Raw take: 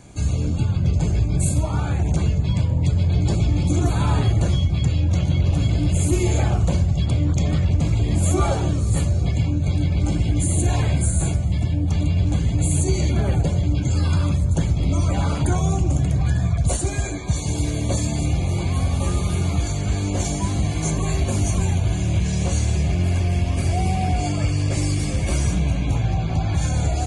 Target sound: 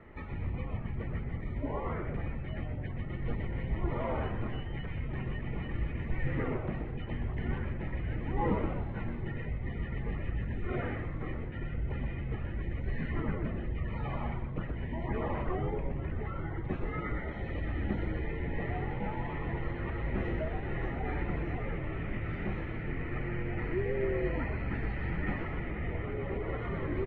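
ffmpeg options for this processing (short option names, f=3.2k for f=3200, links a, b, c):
-filter_complex "[0:a]alimiter=limit=-16dB:level=0:latency=1:release=454,asplit=5[a][b][c][d][e];[b]adelay=124,afreqshift=130,volume=-7.5dB[f];[c]adelay=248,afreqshift=260,volume=-18dB[g];[d]adelay=372,afreqshift=390,volume=-28.4dB[h];[e]adelay=496,afreqshift=520,volume=-38.9dB[i];[a][f][g][h][i]amix=inputs=5:normalize=0,highpass=f=290:t=q:w=0.5412,highpass=f=290:t=q:w=1.307,lowpass=f=2.6k:t=q:w=0.5176,lowpass=f=2.6k:t=q:w=0.7071,lowpass=f=2.6k:t=q:w=1.932,afreqshift=-350"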